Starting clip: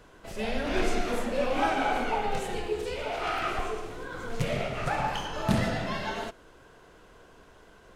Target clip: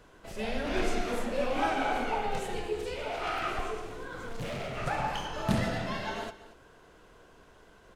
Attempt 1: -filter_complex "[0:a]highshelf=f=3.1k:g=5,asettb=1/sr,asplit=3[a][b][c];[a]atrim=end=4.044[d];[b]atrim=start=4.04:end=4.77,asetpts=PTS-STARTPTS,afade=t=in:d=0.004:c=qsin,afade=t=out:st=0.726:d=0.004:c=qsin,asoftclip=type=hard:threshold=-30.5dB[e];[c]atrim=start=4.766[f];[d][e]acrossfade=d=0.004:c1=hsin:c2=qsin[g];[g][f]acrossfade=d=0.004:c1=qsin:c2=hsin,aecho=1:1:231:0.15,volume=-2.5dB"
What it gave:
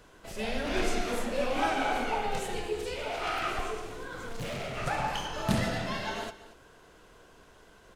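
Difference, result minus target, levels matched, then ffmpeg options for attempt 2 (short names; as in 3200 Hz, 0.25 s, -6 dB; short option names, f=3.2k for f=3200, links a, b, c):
8000 Hz band +3.5 dB
-filter_complex "[0:a]asettb=1/sr,asplit=3[a][b][c];[a]atrim=end=4.044[d];[b]atrim=start=4.04:end=4.77,asetpts=PTS-STARTPTS,afade=t=in:d=0.004:c=qsin,afade=t=out:st=0.726:d=0.004:c=qsin,asoftclip=type=hard:threshold=-30.5dB[e];[c]atrim=start=4.766[f];[d][e]acrossfade=d=0.004:c1=hsin:c2=qsin[g];[g][f]acrossfade=d=0.004:c1=qsin:c2=hsin,aecho=1:1:231:0.15,volume=-2.5dB"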